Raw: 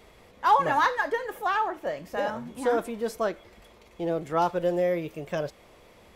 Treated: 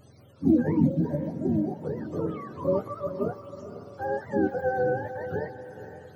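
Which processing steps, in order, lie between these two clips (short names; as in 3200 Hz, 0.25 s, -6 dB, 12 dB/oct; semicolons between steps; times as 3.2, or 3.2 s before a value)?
spectrum mirrored in octaves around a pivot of 520 Hz; diffused feedback echo 0.485 s, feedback 43%, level -11 dB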